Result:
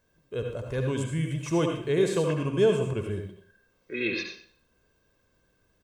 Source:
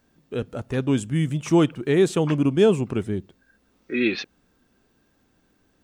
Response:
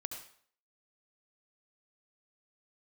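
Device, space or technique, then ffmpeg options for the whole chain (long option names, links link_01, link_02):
microphone above a desk: -filter_complex "[0:a]aecho=1:1:1.9:0.57[link_01];[1:a]atrim=start_sample=2205[link_02];[link_01][link_02]afir=irnorm=-1:irlink=0,volume=-3.5dB"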